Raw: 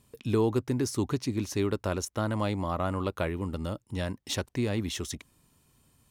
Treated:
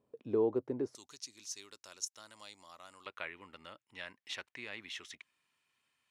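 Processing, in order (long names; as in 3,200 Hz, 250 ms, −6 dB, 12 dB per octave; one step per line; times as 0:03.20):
resonant band-pass 500 Hz, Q 1.7, from 0:00.95 6,200 Hz, from 0:03.06 2,200 Hz
level −1.5 dB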